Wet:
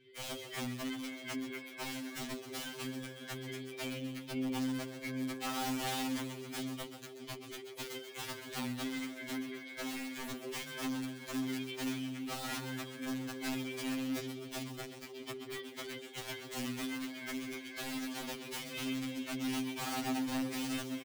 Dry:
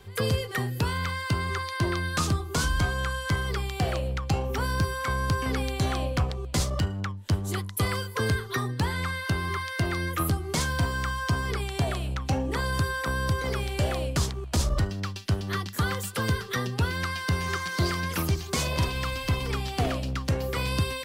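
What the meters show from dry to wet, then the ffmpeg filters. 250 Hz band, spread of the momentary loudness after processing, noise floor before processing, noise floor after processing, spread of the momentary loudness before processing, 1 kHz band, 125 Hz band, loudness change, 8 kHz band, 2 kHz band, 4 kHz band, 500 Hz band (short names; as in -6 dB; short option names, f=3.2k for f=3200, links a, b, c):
-4.5 dB, 8 LU, -37 dBFS, -50 dBFS, 3 LU, -13.5 dB, -22.0 dB, -11.0 dB, -9.0 dB, -12.5 dB, -8.5 dB, -12.0 dB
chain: -filter_complex "[0:a]asplit=3[a][b][c];[a]bandpass=f=270:t=q:w=8,volume=0dB[d];[b]bandpass=f=2.29k:t=q:w=8,volume=-6dB[e];[c]bandpass=f=3.01k:t=q:w=8,volume=-9dB[f];[d][e][f]amix=inputs=3:normalize=0,asplit=2[g][h];[h]aecho=0:1:665:0.168[i];[g][i]amix=inputs=2:normalize=0,aeval=exprs='(mod(66.8*val(0)+1,2)-1)/66.8':c=same,asplit=2[j][k];[k]asplit=7[l][m][n][o][p][q][r];[l]adelay=131,afreqshift=99,volume=-10dB[s];[m]adelay=262,afreqshift=198,volume=-14.3dB[t];[n]adelay=393,afreqshift=297,volume=-18.6dB[u];[o]adelay=524,afreqshift=396,volume=-22.9dB[v];[p]adelay=655,afreqshift=495,volume=-27.2dB[w];[q]adelay=786,afreqshift=594,volume=-31.5dB[x];[r]adelay=917,afreqshift=693,volume=-35.8dB[y];[s][t][u][v][w][x][y]amix=inputs=7:normalize=0[z];[j][z]amix=inputs=2:normalize=0,afftfilt=real='re*2.45*eq(mod(b,6),0)':imag='im*2.45*eq(mod(b,6),0)':win_size=2048:overlap=0.75,volume=4dB"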